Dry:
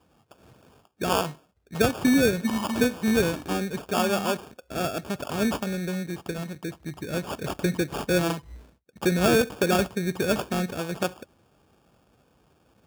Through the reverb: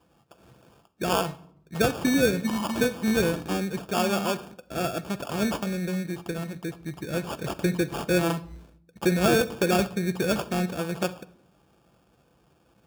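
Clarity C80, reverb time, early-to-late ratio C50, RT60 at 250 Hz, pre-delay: 21.0 dB, 0.65 s, 17.5 dB, 1.0 s, 6 ms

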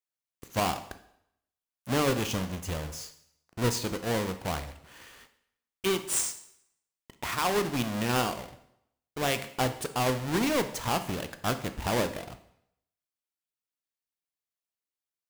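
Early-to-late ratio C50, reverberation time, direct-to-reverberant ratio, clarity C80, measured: 12.5 dB, 0.70 s, 9.5 dB, 15.5 dB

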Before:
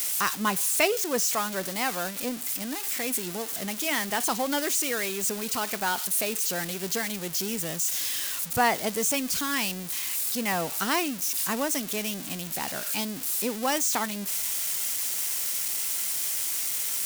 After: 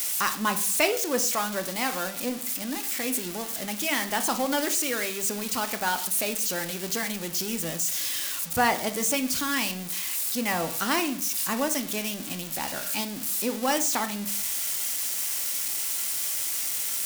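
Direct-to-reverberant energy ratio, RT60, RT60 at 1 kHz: 7.0 dB, 0.50 s, 0.50 s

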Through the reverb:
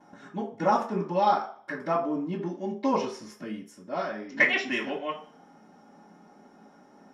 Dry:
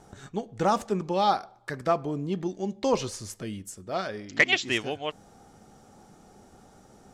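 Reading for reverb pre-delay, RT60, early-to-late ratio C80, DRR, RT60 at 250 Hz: 3 ms, 0.45 s, 13.5 dB, -14.5 dB, 0.40 s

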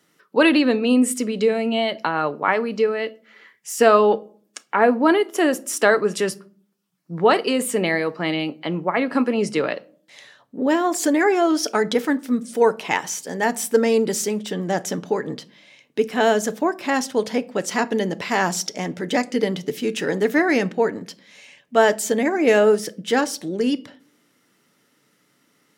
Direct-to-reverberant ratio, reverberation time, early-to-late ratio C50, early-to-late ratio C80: 11.5 dB, 0.45 s, 22.5 dB, 27.5 dB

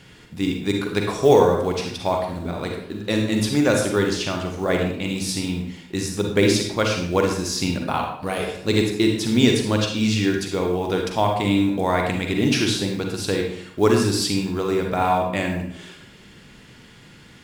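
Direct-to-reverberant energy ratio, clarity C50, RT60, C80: 1.5 dB, 3.5 dB, 0.70 s, 7.0 dB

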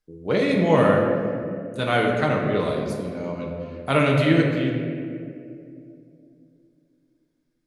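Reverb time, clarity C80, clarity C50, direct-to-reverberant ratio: 2.6 s, 3.5 dB, 2.0 dB, -1.0 dB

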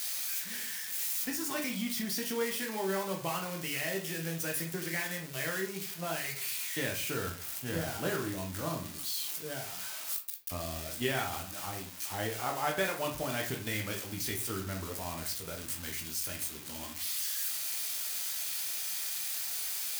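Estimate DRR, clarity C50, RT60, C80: 1.0 dB, 8.5 dB, 0.45 s, 14.0 dB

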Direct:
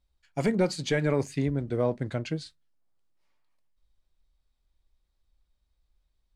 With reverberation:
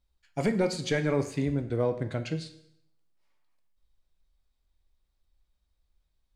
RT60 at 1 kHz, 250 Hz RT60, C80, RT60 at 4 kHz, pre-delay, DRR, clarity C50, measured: 0.75 s, 0.75 s, 15.0 dB, 0.70 s, 7 ms, 8.5 dB, 12.5 dB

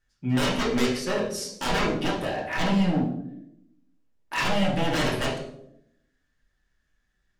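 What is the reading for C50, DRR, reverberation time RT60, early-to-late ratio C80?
5.0 dB, -6.0 dB, 0.80 s, 8.5 dB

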